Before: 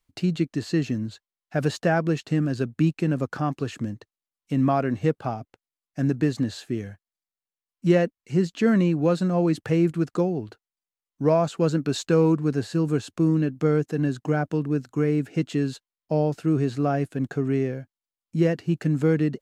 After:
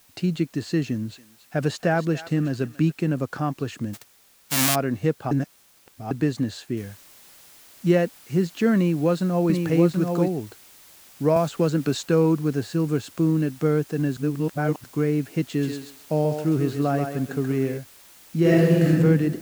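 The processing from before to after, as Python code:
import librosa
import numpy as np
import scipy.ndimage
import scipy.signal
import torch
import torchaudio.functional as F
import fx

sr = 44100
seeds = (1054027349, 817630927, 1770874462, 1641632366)

y = fx.echo_thinned(x, sr, ms=281, feedback_pct=30, hz=1200.0, wet_db=-12.0, at=(0.82, 2.92))
y = fx.envelope_flatten(y, sr, power=0.1, at=(3.93, 4.74), fade=0.02)
y = fx.noise_floor_step(y, sr, seeds[0], at_s=6.77, before_db=-57, after_db=-50, tilt_db=0.0)
y = fx.echo_single(y, sr, ms=735, db=-4.0, at=(8.76, 10.28))
y = fx.band_squash(y, sr, depth_pct=70, at=(11.36, 11.95))
y = fx.echo_thinned(y, sr, ms=134, feedback_pct=26, hz=340.0, wet_db=-5, at=(15.57, 17.77), fade=0.02)
y = fx.reverb_throw(y, sr, start_s=18.41, length_s=0.48, rt60_s=1.6, drr_db=-7.0)
y = fx.edit(y, sr, fx.reverse_span(start_s=5.31, length_s=0.8),
    fx.reverse_span(start_s=14.17, length_s=0.67), tone=tone)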